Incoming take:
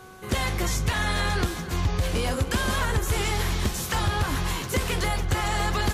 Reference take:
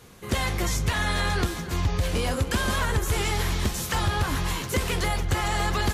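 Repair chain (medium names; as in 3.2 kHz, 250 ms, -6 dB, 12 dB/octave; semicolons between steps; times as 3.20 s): de-hum 374.4 Hz, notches 4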